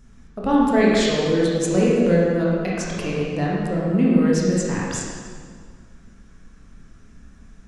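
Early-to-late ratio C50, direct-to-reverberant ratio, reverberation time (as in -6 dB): -2.5 dB, -5.5 dB, 1.9 s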